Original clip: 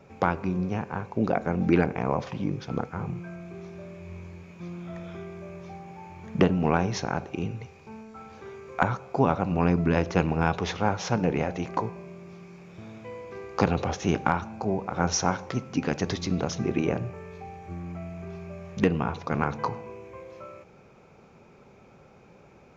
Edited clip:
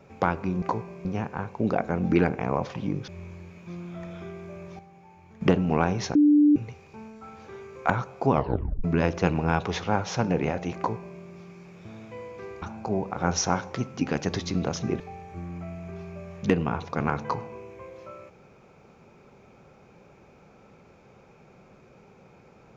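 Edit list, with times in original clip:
2.65–4.01 s: delete
5.72–6.34 s: gain -9 dB
7.08–7.49 s: bleep 295 Hz -14 dBFS
9.25 s: tape stop 0.52 s
11.70–12.13 s: copy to 0.62 s
13.55–14.38 s: delete
16.76–17.34 s: delete

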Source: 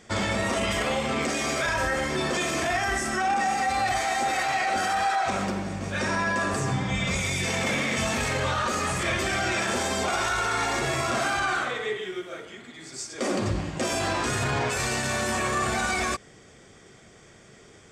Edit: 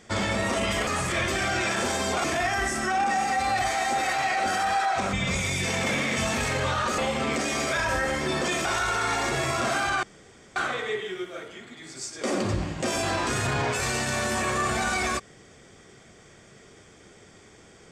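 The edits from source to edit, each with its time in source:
0.87–2.54 s: swap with 8.78–10.15 s
5.43–6.93 s: delete
11.53 s: insert room tone 0.53 s

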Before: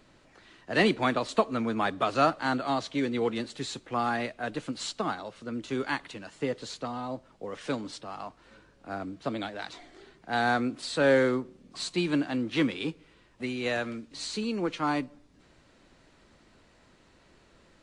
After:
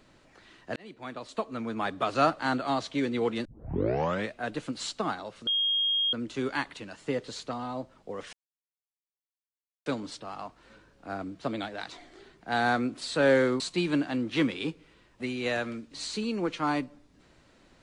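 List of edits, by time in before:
0.76–2.28 s: fade in
3.45 s: tape start 0.88 s
5.47 s: add tone 3.25 kHz -23.5 dBFS 0.66 s
7.67 s: insert silence 1.53 s
11.41–11.80 s: delete

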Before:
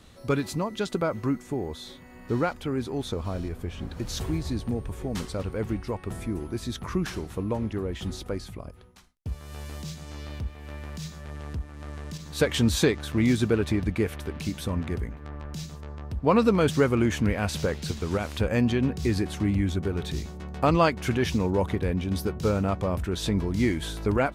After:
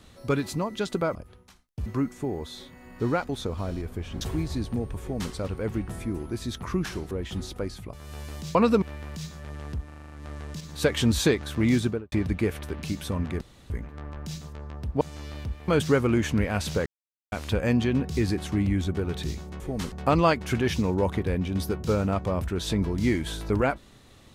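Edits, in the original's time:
2.58–2.96 s: delete
3.88–4.16 s: delete
4.96–5.28 s: copy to 20.48 s
5.83–6.09 s: delete
7.32–7.81 s: delete
8.63–9.34 s: move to 1.15 s
9.96–10.63 s: swap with 16.29–16.56 s
11.68 s: stutter 0.04 s, 7 plays
13.35–13.69 s: studio fade out
14.98 s: insert room tone 0.29 s
17.74–18.20 s: mute

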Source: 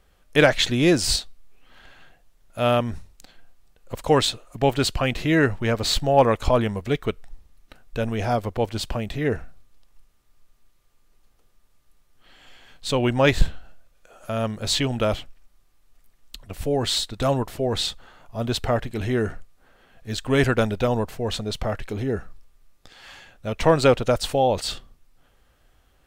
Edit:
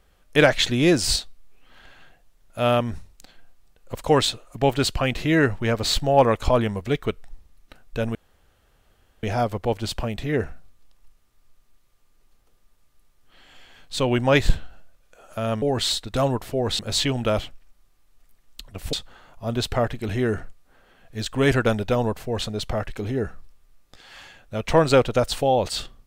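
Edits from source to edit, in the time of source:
8.15 s: insert room tone 1.08 s
16.68–17.85 s: move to 14.54 s

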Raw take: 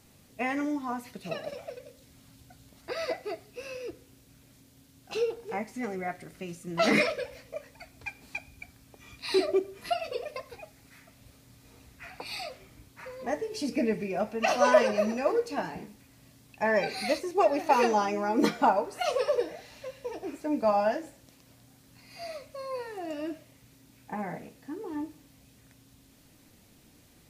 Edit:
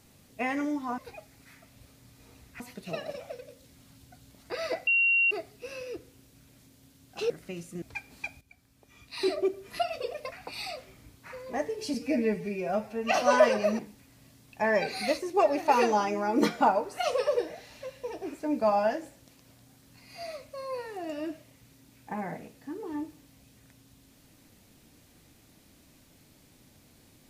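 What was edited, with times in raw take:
3.25 s: add tone 2.75 kHz -20.5 dBFS 0.44 s
5.24–6.22 s: delete
6.74–7.93 s: delete
8.52–9.82 s: fade in, from -14 dB
10.43–12.05 s: move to 0.98 s
13.67–14.45 s: stretch 1.5×
15.13–15.80 s: delete

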